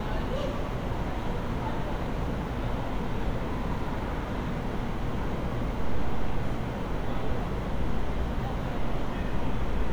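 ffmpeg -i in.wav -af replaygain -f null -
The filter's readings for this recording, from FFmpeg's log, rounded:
track_gain = +17.7 dB
track_peak = 0.126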